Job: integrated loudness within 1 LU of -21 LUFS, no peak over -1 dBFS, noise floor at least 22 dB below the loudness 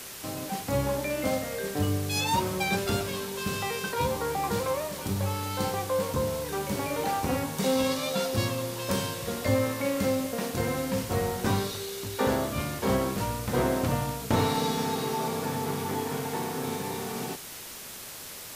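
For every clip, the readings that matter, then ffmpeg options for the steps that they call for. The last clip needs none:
noise floor -42 dBFS; noise floor target -52 dBFS; loudness -29.5 LUFS; peak -12.5 dBFS; loudness target -21.0 LUFS
-> -af "afftdn=nr=10:nf=-42"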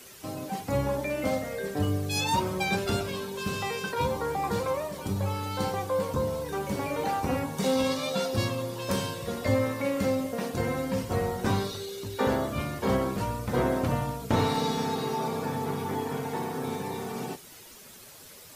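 noise floor -49 dBFS; noise floor target -52 dBFS
-> -af "afftdn=nr=6:nf=-49"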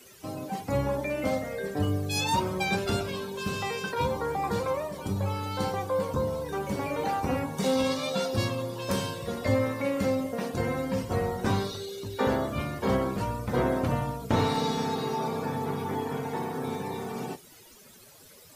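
noise floor -53 dBFS; loudness -29.5 LUFS; peak -13.0 dBFS; loudness target -21.0 LUFS
-> -af "volume=8.5dB"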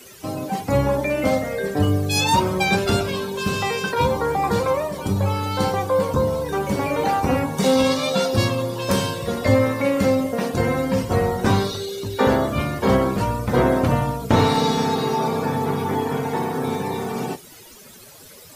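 loudness -21.0 LUFS; peak -4.5 dBFS; noise floor -44 dBFS

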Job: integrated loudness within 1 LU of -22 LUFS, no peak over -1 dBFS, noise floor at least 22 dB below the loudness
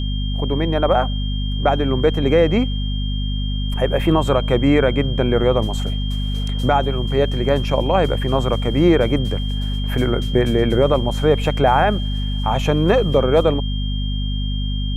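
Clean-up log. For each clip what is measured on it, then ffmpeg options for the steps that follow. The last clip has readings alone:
hum 50 Hz; harmonics up to 250 Hz; hum level -19 dBFS; steady tone 3200 Hz; tone level -31 dBFS; loudness -19.0 LUFS; peak -2.5 dBFS; loudness target -22.0 LUFS
-> -af "bandreject=f=50:t=h:w=4,bandreject=f=100:t=h:w=4,bandreject=f=150:t=h:w=4,bandreject=f=200:t=h:w=4,bandreject=f=250:t=h:w=4"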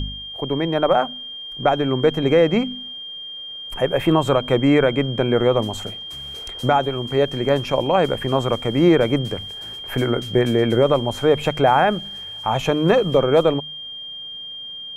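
hum none; steady tone 3200 Hz; tone level -31 dBFS
-> -af "bandreject=f=3.2k:w=30"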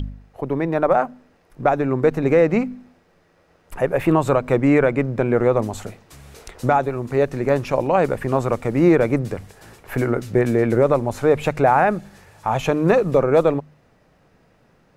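steady tone none; loudness -19.5 LUFS; peak -4.5 dBFS; loudness target -22.0 LUFS
-> -af "volume=-2.5dB"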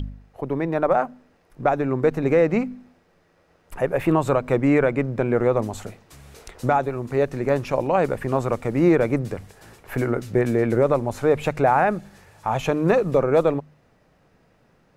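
loudness -22.0 LUFS; peak -7.0 dBFS; noise floor -61 dBFS

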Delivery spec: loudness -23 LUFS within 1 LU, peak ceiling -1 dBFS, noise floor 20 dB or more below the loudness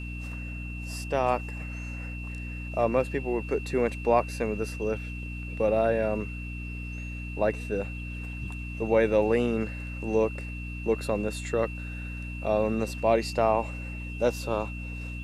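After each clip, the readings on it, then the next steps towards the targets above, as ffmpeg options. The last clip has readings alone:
hum 60 Hz; harmonics up to 300 Hz; hum level -34 dBFS; steady tone 2700 Hz; tone level -41 dBFS; loudness -29.0 LUFS; peak -9.5 dBFS; loudness target -23.0 LUFS
-> -af "bandreject=f=60:t=h:w=4,bandreject=f=120:t=h:w=4,bandreject=f=180:t=h:w=4,bandreject=f=240:t=h:w=4,bandreject=f=300:t=h:w=4"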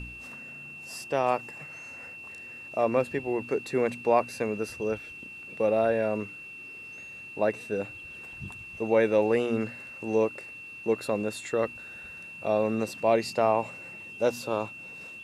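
hum none; steady tone 2700 Hz; tone level -41 dBFS
-> -af "bandreject=f=2.7k:w=30"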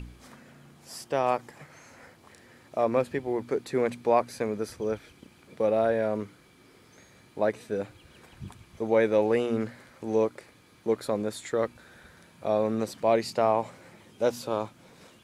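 steady tone none; loudness -28.5 LUFS; peak -10.5 dBFS; loudness target -23.0 LUFS
-> -af "volume=5.5dB"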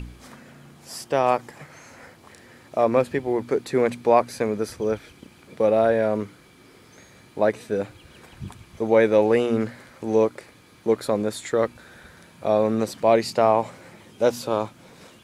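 loudness -23.0 LUFS; peak -5.0 dBFS; noise floor -52 dBFS

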